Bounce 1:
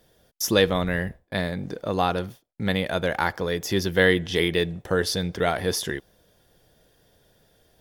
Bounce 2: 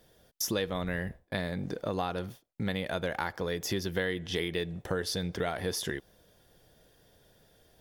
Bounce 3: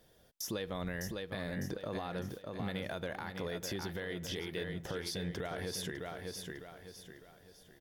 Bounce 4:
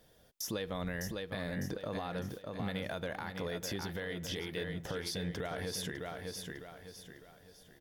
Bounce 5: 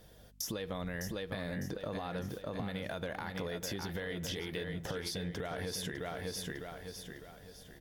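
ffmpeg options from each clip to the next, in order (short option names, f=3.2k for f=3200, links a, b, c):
-af "acompressor=threshold=-28dB:ratio=4,volume=-1.5dB"
-af "aecho=1:1:604|1208|1812|2416:0.398|0.151|0.0575|0.0218,alimiter=level_in=1.5dB:limit=-24dB:level=0:latency=1:release=101,volume=-1.5dB,volume=-3dB"
-af "bandreject=f=370:w=12,volume=1dB"
-af "aeval=exprs='val(0)+0.000562*(sin(2*PI*50*n/s)+sin(2*PI*2*50*n/s)/2+sin(2*PI*3*50*n/s)/3+sin(2*PI*4*50*n/s)/4+sin(2*PI*5*50*n/s)/5)':c=same,acompressor=threshold=-40dB:ratio=6,volume=5dB" -ar 48000 -c:a libvorbis -b:a 96k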